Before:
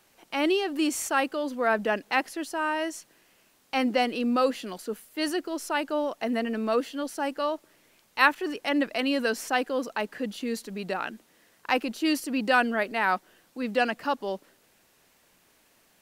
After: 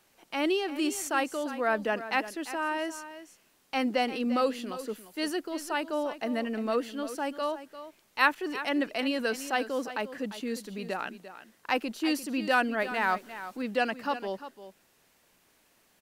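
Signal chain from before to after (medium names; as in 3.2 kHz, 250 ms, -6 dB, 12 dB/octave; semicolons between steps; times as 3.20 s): 12.80–13.62 s: companding laws mixed up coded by mu; on a send: delay 347 ms -13 dB; on the sum: trim -3 dB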